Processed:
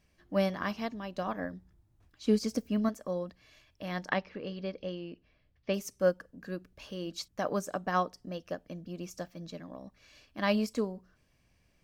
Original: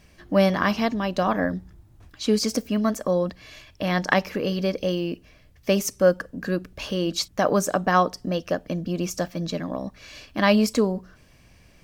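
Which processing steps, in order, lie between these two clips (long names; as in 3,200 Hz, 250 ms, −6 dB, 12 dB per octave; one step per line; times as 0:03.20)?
0:02.22–0:02.89: low-shelf EQ 360 Hz +6 dB
0:04.09–0:05.74: low-pass filter 4,500 Hz 24 dB per octave
expander for the loud parts 1.5 to 1, over −28 dBFS
level −8 dB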